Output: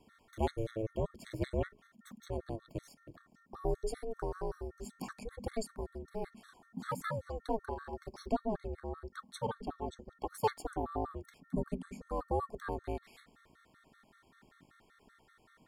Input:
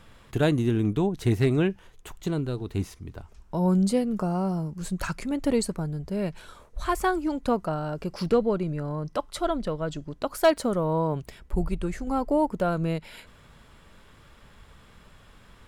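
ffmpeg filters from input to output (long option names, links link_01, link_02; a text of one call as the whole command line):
ffmpeg -i in.wav -filter_complex "[0:a]equalizer=frequency=2700:width=6.1:gain=-11,acrossover=split=150|1800[link_01][link_02][link_03];[link_01]aeval=exprs='sgn(val(0))*max(abs(val(0))-0.00141,0)':channel_layout=same[link_04];[link_04][link_02][link_03]amix=inputs=3:normalize=0,aeval=exprs='val(0)+0.00178*sin(2*PI*1600*n/s)':channel_layout=same,aeval=exprs='val(0)*sin(2*PI*220*n/s)':channel_layout=same,afftfilt=real='re*gt(sin(2*PI*5.2*pts/sr)*(1-2*mod(floor(b*sr/1024/1100),2)),0)':imag='im*gt(sin(2*PI*5.2*pts/sr)*(1-2*mod(floor(b*sr/1024/1100),2)),0)':win_size=1024:overlap=0.75,volume=-6dB" out.wav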